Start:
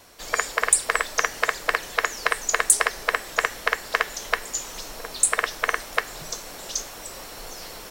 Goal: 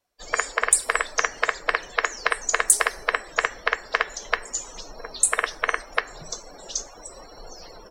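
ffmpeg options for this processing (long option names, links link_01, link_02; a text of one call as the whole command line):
ffmpeg -i in.wav -af "afftdn=noise_reduction=29:noise_floor=-39" out.wav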